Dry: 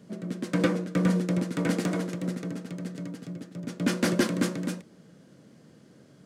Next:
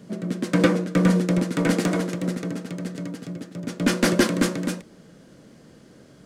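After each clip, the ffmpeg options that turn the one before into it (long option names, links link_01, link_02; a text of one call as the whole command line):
ffmpeg -i in.wav -af "asubboost=boost=6:cutoff=53,volume=6.5dB" out.wav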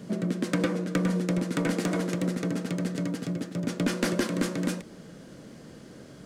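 ffmpeg -i in.wav -af "acompressor=threshold=-28dB:ratio=4,volume=3dB" out.wav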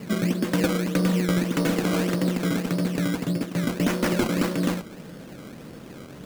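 ffmpeg -i in.wav -filter_complex "[0:a]asplit=2[link_01][link_02];[link_02]alimiter=limit=-22dB:level=0:latency=1,volume=-1dB[link_03];[link_01][link_03]amix=inputs=2:normalize=0,acrusher=samples=17:mix=1:aa=0.000001:lfo=1:lforange=17:lforate=1.7" out.wav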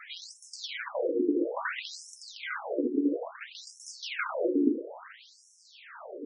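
ffmpeg -i in.wav -af "aeval=exprs='val(0)+0.5*0.0133*sgn(val(0))':channel_layout=same,aemphasis=mode=reproduction:type=50fm,afftfilt=real='re*between(b*sr/1024,310*pow(7600/310,0.5+0.5*sin(2*PI*0.59*pts/sr))/1.41,310*pow(7600/310,0.5+0.5*sin(2*PI*0.59*pts/sr))*1.41)':imag='im*between(b*sr/1024,310*pow(7600/310,0.5+0.5*sin(2*PI*0.59*pts/sr))/1.41,310*pow(7600/310,0.5+0.5*sin(2*PI*0.59*pts/sr))*1.41)':win_size=1024:overlap=0.75,volume=3dB" out.wav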